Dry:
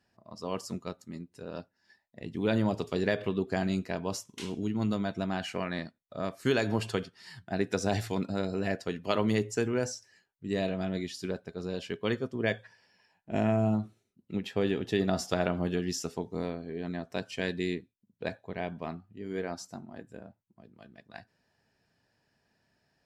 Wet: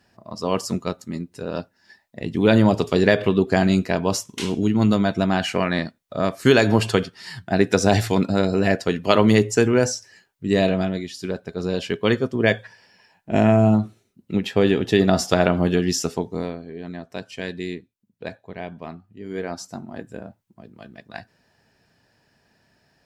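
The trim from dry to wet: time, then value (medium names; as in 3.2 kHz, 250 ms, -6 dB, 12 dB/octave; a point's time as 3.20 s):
10.77 s +12 dB
11.04 s +4 dB
11.65 s +11 dB
16.12 s +11 dB
16.72 s +2 dB
18.97 s +2 dB
19.99 s +10.5 dB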